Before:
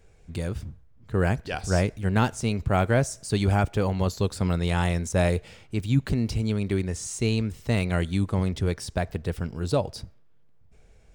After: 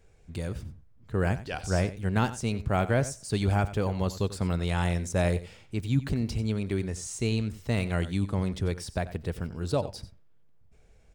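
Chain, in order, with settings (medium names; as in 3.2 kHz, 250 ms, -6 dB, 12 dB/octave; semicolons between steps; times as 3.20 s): delay 91 ms -15 dB; trim -3.5 dB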